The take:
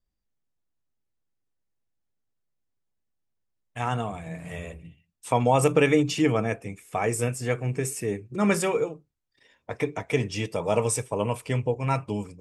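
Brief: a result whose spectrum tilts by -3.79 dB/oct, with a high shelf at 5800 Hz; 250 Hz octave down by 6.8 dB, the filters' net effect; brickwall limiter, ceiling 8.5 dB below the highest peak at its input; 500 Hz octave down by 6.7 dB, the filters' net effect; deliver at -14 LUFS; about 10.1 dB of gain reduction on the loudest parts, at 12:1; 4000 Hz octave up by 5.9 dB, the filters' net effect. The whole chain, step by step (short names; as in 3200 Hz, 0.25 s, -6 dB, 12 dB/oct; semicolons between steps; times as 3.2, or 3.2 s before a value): bell 250 Hz -7.5 dB; bell 500 Hz -6 dB; bell 4000 Hz +5.5 dB; high shelf 5800 Hz +8 dB; compressor 12:1, threshold -28 dBFS; gain +22 dB; limiter -2 dBFS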